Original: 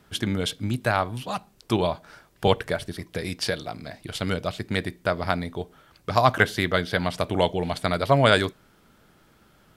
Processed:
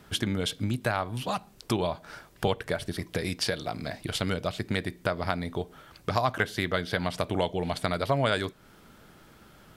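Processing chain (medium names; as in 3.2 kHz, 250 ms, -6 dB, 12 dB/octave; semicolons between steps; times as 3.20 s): compression 2.5:1, threshold -32 dBFS, peak gain reduction 13 dB; trim +4 dB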